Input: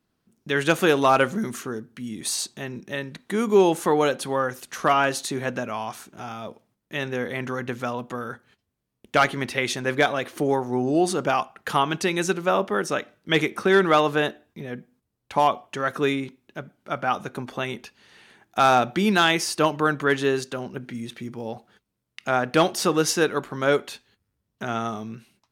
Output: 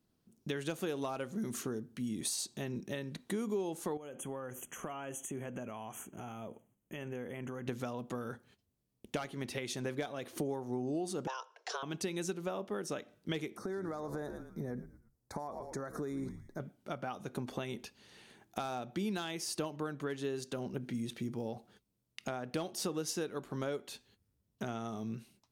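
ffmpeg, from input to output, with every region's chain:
ffmpeg -i in.wav -filter_complex "[0:a]asettb=1/sr,asplit=3[link_01][link_02][link_03];[link_01]atrim=end=3.974[link_04];[link_02]atrim=start=3.97:end=7.67,asetpts=PTS-STARTPTS,afade=type=in:duration=0.004:curve=qsin,afade=type=out:start_time=3.696:duration=0.004:curve=qsin,acompressor=threshold=-37dB:ratio=3:attack=3.2:release=140:knee=1:detection=peak,asuperstop=centerf=4500:order=20:qfactor=1.7[link_05];[link_03]atrim=start=7.666[link_06];[link_04][link_05]acrossfade=duration=0.004:curve1=hsin:curve2=qsin[link_07];[link_07][link_06]acrossfade=duration=0.004:curve1=qsin:curve2=hsin,asettb=1/sr,asplit=3[link_08][link_09][link_10];[link_08]atrim=end=11.274[link_11];[link_09]atrim=start=11.27:end=11.83,asetpts=PTS-STARTPTS,afade=type=in:duration=0.004:curve=qsin,afade=type=out:start_time=0.556:duration=0.004:curve=qsin,bandreject=frequency=4600:width=27,afreqshift=260,highpass=frequency=370:width=0.5412,highpass=frequency=370:width=1.3066,equalizer=frequency=370:width_type=q:width=4:gain=-7,equalizer=frequency=1200:width_type=q:width=4:gain=-3,equalizer=frequency=2000:width_type=q:width=4:gain=-9,equalizer=frequency=3400:width_type=q:width=4:gain=-4,equalizer=frequency=5500:width_type=q:width=4:gain=10,lowpass=frequency=6500:width=0.5412,lowpass=frequency=6500:width=1.3066[link_12];[link_10]atrim=start=11.826[link_13];[link_11][link_12]acrossfade=duration=0.004:curve1=hsin:curve2=qsin[link_14];[link_14][link_13]acrossfade=duration=0.004:curve1=qsin:curve2=hsin,asettb=1/sr,asplit=3[link_15][link_16][link_17];[link_15]atrim=end=13.574[link_18];[link_16]atrim=start=13.57:end=16.6,asetpts=PTS-STARTPTS,afade=type=in:duration=0.004:curve=qsin,afade=type=out:start_time=3.026:duration=0.004:curve=qsin,asplit=4[link_19][link_20][link_21][link_22];[link_20]adelay=113,afreqshift=-88,volume=-18dB[link_23];[link_21]adelay=226,afreqshift=-176,volume=-25.5dB[link_24];[link_22]adelay=339,afreqshift=-264,volume=-33.1dB[link_25];[link_19][link_23][link_24][link_25]amix=inputs=4:normalize=0,atrim=end_sample=133623,acompressor=threshold=-30dB:ratio=6:attack=3.2:release=140:knee=1:detection=peak,asuperstop=centerf=2900:order=4:qfactor=1.1[link_26];[link_17]atrim=start=16.596[link_27];[link_18][link_26]acrossfade=duration=0.004:curve1=hsin:curve2=qsin[link_28];[link_28][link_27]acrossfade=duration=0.004:curve1=qsin:curve2=hsin,acompressor=threshold=-31dB:ratio=6,equalizer=frequency=1600:width=0.61:gain=-8,volume=-1.5dB" out.wav

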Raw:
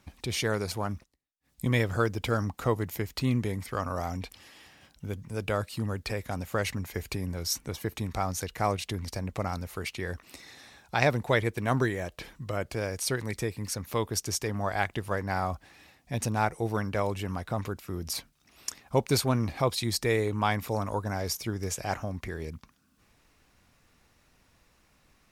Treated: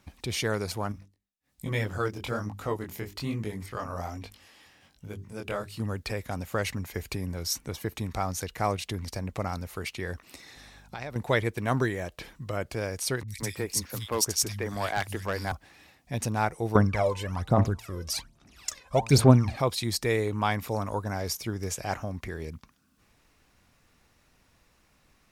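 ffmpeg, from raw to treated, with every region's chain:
ffmpeg -i in.wav -filter_complex "[0:a]asettb=1/sr,asplit=3[link_01][link_02][link_03];[link_01]atrim=end=0.924[link_04];[link_02]atrim=start=0.92:end=5.8,asetpts=PTS-STARTPTS,afade=type=in:duration=0.004:curve=qsin,afade=type=out:start_time=4.876:duration=0.004:curve=qsin,bandreject=frequency=50:width_type=h:width=6,bandreject=frequency=100:width_type=h:width=6,bandreject=frequency=150:width_type=h:width=6,bandreject=frequency=200:width_type=h:width=6,bandreject=frequency=250:width_type=h:width=6,bandreject=frequency=300:width_type=h:width=6,bandreject=frequency=350:width_type=h:width=6,bandreject=frequency=400:width_type=h:width=6,flanger=delay=18.5:depth=6.6:speed=1.2[link_05];[link_03]atrim=start=5.796[link_06];[link_04][link_05]acrossfade=duration=0.004:curve1=hsin:curve2=qsin[link_07];[link_07][link_06]acrossfade=duration=0.004:curve1=qsin:curve2=hsin,asettb=1/sr,asplit=3[link_08][link_09][link_10];[link_08]atrim=end=10.564[link_11];[link_09]atrim=start=10.56:end=11.16,asetpts=PTS-STARTPTS,afade=type=in:duration=0.004:curve=qsin,afade=type=out:start_time=0.596:duration=0.004:curve=qsin,acompressor=threshold=-38dB:ratio=3:attack=3.2:release=140:knee=1:detection=peak,aeval=exprs='val(0)+0.002*(sin(2*PI*50*n/s)+sin(2*PI*2*50*n/s)/2+sin(2*PI*3*50*n/s)/3+sin(2*PI*4*50*n/s)/4+sin(2*PI*5*50*n/s)/5)':channel_layout=same[link_12];[link_10]atrim=start=11.156[link_13];[link_11][link_12]acrossfade=duration=0.004:curve1=hsin:curve2=qsin[link_14];[link_14][link_13]acrossfade=duration=0.004:curve1=qsin:curve2=hsin,asettb=1/sr,asplit=3[link_15][link_16][link_17];[link_15]atrim=end=13.234[link_18];[link_16]atrim=start=13.23:end=15.52,asetpts=PTS-STARTPTS,afade=type=in:duration=0.004:curve=qsin,afade=type=out:start_time=2.286:duration=0.004:curve=qsin,acrossover=split=160|2700[link_19][link_20][link_21];[link_21]adelay=50[link_22];[link_20]adelay=170[link_23];[link_19][link_23][link_22]amix=inputs=3:normalize=0,atrim=end_sample=100989,volume=22dB,asoftclip=hard,volume=-22dB,highshelf=frequency=2300:gain=7[link_24];[link_17]atrim=start=15.516[link_25];[link_18][link_24]acrossfade=duration=0.004:curve1=hsin:curve2=qsin[link_26];[link_26][link_25]acrossfade=duration=0.004:curve1=qsin:curve2=hsin,asettb=1/sr,asplit=3[link_27][link_28][link_29];[link_27]atrim=end=16.754[link_30];[link_28]atrim=start=16.75:end=19.56,asetpts=PTS-STARTPTS,afade=type=in:duration=0.004:curve=qsin,afade=type=out:start_time=2.806:duration=0.004:curve=qsin,lowpass=10000,bandreject=frequency=112.6:width_type=h:width=4,bandreject=frequency=225.2:width_type=h:width=4,bandreject=frequency=337.8:width_type=h:width=4,bandreject=frequency=450.4:width_type=h:width=4,bandreject=frequency=563:width_type=h:width=4,bandreject=frequency=675.6:width_type=h:width=4,bandreject=frequency=788.2:width_type=h:width=4,bandreject=frequency=900.8:width_type=h:width=4,bandreject=frequency=1013.4:width_type=h:width=4,bandreject=frequency=1126:width_type=h:width=4,bandreject=frequency=1238.6:width_type=h:width=4,aphaser=in_gain=1:out_gain=1:delay=2:decay=0.75:speed=1.2:type=sinusoidal[link_31];[link_29]atrim=start=19.556[link_32];[link_30][link_31]acrossfade=duration=0.004:curve1=hsin:curve2=qsin[link_33];[link_33][link_32]acrossfade=duration=0.004:curve1=qsin:curve2=hsin" out.wav

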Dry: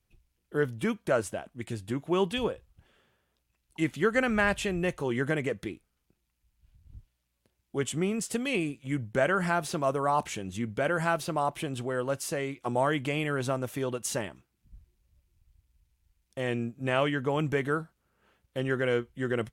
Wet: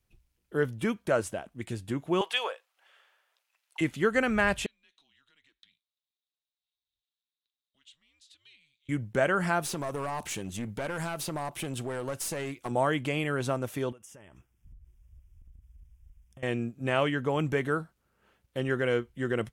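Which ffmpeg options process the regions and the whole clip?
ffmpeg -i in.wav -filter_complex "[0:a]asettb=1/sr,asplit=3[link_01][link_02][link_03];[link_01]atrim=end=2.214[link_04];[link_02]atrim=start=2.21:end=3.81,asetpts=PTS-STARTPTS,afade=type=in:duration=0.004:curve=qsin,afade=type=out:start_time=1.596:duration=0.004:curve=qsin,highpass=frequency=570:width=0.5412,highpass=frequency=570:width=1.3066,equalizer=frequency=2000:width_type=o:width=2.8:gain=6.5[link_05];[link_03]atrim=start=3.806[link_06];[link_04][link_05]acrossfade=duration=0.004:curve1=hsin:curve2=qsin[link_07];[link_07][link_06]acrossfade=duration=0.004:curve1=qsin:curve2=hsin,asettb=1/sr,asplit=3[link_08][link_09][link_10];[link_08]atrim=end=4.664[link_11];[link_09]atrim=start=4.66:end=8.89,asetpts=PTS-STARTPTS,afade=type=in:duration=0.004:curve=qsin,afade=type=out:start_time=4.226:duration=0.004:curve=qsin,acompressor=threshold=-34dB:ratio=5:attack=3.2:release=140:knee=1:detection=peak,bandpass=frequency=3900:width_type=q:width=8.8,afreqshift=-150[link_12];[link_10]atrim=start=8.886[link_13];[link_11][link_12]acrossfade=duration=0.004:curve1=hsin:curve2=qsin[link_14];[link_14][link_13]acrossfade=duration=0.004:curve1=qsin:curve2=hsin,asettb=1/sr,asplit=3[link_15][link_16][link_17];[link_15]atrim=end=9.624[link_18];[link_16]atrim=start=9.62:end=12.71,asetpts=PTS-STARTPTS,afade=type=in:duration=0.004:curve=qsin,afade=type=out:start_time=3.086:duration=0.004:curve=qsin,highshelf=frequency=6400:gain=8,acompressor=threshold=-28dB:ratio=4:attack=3.2:release=140:knee=1:detection=peak,aeval=exprs='clip(val(0),-1,0.0224)':channel_layout=same[link_19];[link_17]atrim=start=12.706[link_20];[link_18][link_19]acrossfade=duration=0.004:curve1=hsin:curve2=qsin[link_21];[link_21][link_20]acrossfade=duration=0.004:curve1=qsin:curve2=hsin,asettb=1/sr,asplit=3[link_22][link_23][link_24];[link_22]atrim=end=13.924[link_25];[link_23]atrim=start=13.92:end=16.43,asetpts=PTS-STARTPTS,afade=type=in:duration=0.004:curve=qsin,afade=type=out:start_time=2.506:duration=0.004:curve=qsin,asubboost=boost=12:cutoff=120,acompressor=threshold=-47dB:ratio=12:attack=3.2:release=140:knee=1:detection=peak,asuperstop=centerf=4200:order=4:qfactor=2.7[link_26];[link_24]atrim=start=16.426[link_27];[link_25][link_26]acrossfade=duration=0.004:curve1=hsin:curve2=qsin[link_28];[link_28][link_27]acrossfade=duration=0.004:curve1=qsin:curve2=hsin" out.wav

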